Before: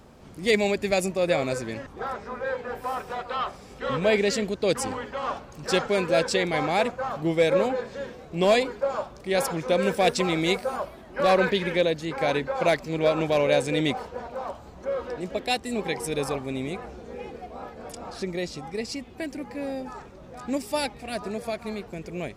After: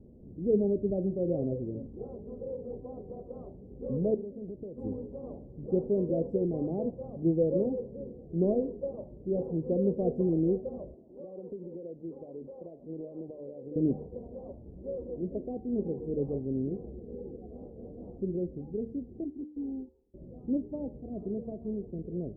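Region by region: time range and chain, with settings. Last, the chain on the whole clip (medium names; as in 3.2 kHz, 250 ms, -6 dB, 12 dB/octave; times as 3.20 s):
4.14–4.78 s: compression 10:1, threshold -33 dBFS + low-pass 1.1 kHz + loudspeaker Doppler distortion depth 0.34 ms
10.94–13.76 s: high-pass 480 Hz 6 dB/octave + compression 8:1, threshold -31 dBFS
19.24–20.14 s: gate -35 dBFS, range -23 dB + static phaser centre 570 Hz, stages 6
whole clip: inverse Chebyshev low-pass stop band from 1.5 kHz, stop band 60 dB; de-hum 75.36 Hz, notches 13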